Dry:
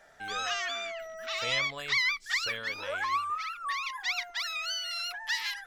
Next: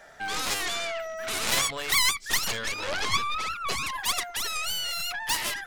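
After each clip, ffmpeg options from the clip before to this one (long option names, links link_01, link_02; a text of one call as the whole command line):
ffmpeg -i in.wav -af "aeval=exprs='0.141*(cos(1*acos(clip(val(0)/0.141,-1,1)))-cos(1*PI/2))+0.0112*(cos(6*acos(clip(val(0)/0.141,-1,1)))-cos(6*PI/2))+0.0562*(cos(7*acos(clip(val(0)/0.141,-1,1)))-cos(7*PI/2))+0.0282*(cos(8*acos(clip(val(0)/0.141,-1,1)))-cos(8*PI/2))':channel_layout=same,volume=2.5dB" out.wav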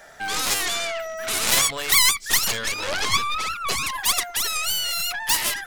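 ffmpeg -i in.wav -af "highshelf=frequency=6700:gain=7.5,volume=3.5dB" out.wav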